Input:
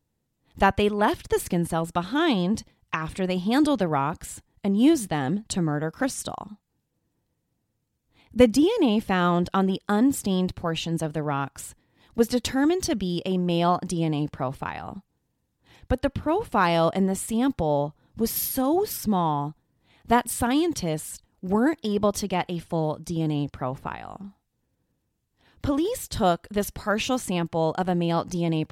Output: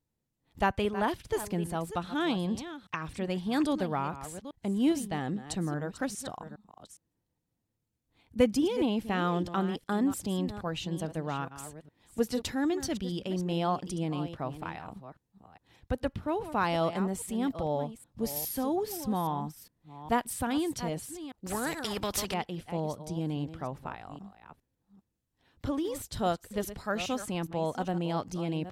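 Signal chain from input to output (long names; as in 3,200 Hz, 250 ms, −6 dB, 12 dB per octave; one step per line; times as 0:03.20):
delay that plays each chunk backwards 410 ms, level −12 dB
0:21.46–0:22.34: every bin compressed towards the loudest bin 2 to 1
level −7.5 dB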